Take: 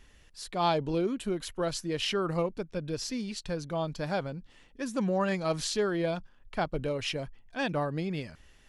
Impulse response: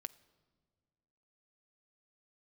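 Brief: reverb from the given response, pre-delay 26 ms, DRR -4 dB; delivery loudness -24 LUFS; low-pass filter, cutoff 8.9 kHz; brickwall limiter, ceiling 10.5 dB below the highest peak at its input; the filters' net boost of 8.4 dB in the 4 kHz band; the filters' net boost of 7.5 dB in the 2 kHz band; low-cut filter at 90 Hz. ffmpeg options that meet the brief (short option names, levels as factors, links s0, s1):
-filter_complex "[0:a]highpass=90,lowpass=8900,equalizer=f=2000:t=o:g=7.5,equalizer=f=4000:t=o:g=8.5,alimiter=limit=0.106:level=0:latency=1,asplit=2[s0][s1];[1:a]atrim=start_sample=2205,adelay=26[s2];[s1][s2]afir=irnorm=-1:irlink=0,volume=2.51[s3];[s0][s3]amix=inputs=2:normalize=0,volume=1.19"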